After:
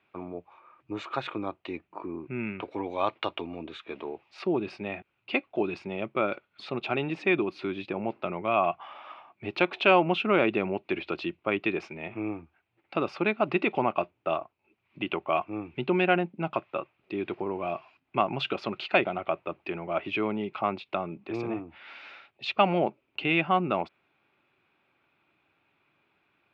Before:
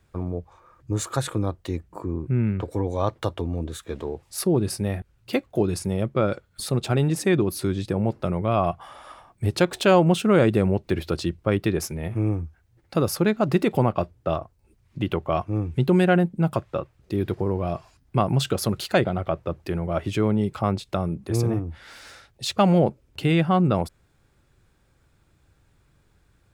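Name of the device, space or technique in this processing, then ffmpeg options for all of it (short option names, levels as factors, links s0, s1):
phone earpiece: -filter_complex "[0:a]highpass=360,equalizer=f=490:t=q:w=4:g=-9,equalizer=f=1700:t=q:w=4:g=-6,equalizer=f=2500:t=q:w=4:g=9,lowpass=f=3200:w=0.5412,lowpass=f=3200:w=1.3066,asplit=3[s0][s1][s2];[s0]afade=t=out:st=2.21:d=0.02[s3];[s1]adynamicequalizer=threshold=0.00794:dfrequency=1700:dqfactor=0.7:tfrequency=1700:tqfactor=0.7:attack=5:release=100:ratio=0.375:range=3:mode=boostabove:tftype=highshelf,afade=t=in:st=2.21:d=0.02,afade=t=out:st=3.82:d=0.02[s4];[s2]afade=t=in:st=3.82:d=0.02[s5];[s3][s4][s5]amix=inputs=3:normalize=0"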